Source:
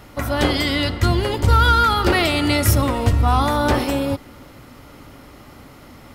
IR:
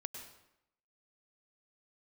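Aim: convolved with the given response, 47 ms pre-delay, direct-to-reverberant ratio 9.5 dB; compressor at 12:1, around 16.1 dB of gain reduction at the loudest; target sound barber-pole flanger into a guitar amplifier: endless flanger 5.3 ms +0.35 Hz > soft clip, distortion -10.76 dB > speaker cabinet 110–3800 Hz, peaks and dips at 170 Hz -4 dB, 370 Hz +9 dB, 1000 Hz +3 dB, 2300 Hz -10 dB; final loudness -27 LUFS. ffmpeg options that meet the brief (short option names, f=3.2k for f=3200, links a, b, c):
-filter_complex "[0:a]acompressor=threshold=-27dB:ratio=12,asplit=2[a][b];[1:a]atrim=start_sample=2205,adelay=47[c];[b][c]afir=irnorm=-1:irlink=0,volume=-7.5dB[d];[a][d]amix=inputs=2:normalize=0,asplit=2[e][f];[f]adelay=5.3,afreqshift=0.35[g];[e][g]amix=inputs=2:normalize=1,asoftclip=threshold=-33dB,highpass=110,equalizer=f=170:t=q:w=4:g=-4,equalizer=f=370:t=q:w=4:g=9,equalizer=f=1k:t=q:w=4:g=3,equalizer=f=2.3k:t=q:w=4:g=-10,lowpass=f=3.8k:w=0.5412,lowpass=f=3.8k:w=1.3066,volume=11.5dB"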